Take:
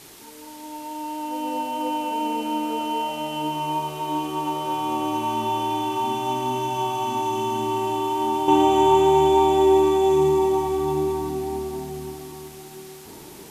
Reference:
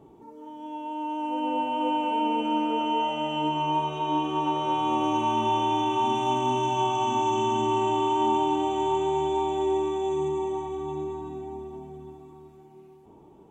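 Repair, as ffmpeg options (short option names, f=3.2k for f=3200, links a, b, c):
-af "afwtdn=0.0056,asetnsamples=n=441:p=0,asendcmd='8.48 volume volume -9dB',volume=0dB"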